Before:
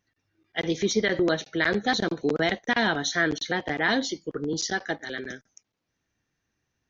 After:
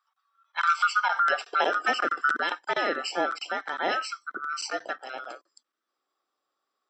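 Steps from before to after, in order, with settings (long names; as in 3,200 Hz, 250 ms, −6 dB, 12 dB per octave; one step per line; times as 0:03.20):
neighbouring bands swapped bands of 1,000 Hz
high-pass filter sweep 1,200 Hz → 310 Hz, 0:00.88–0:01.79
0:00.61–0:02.34: multiband upward and downward compressor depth 100%
level −4.5 dB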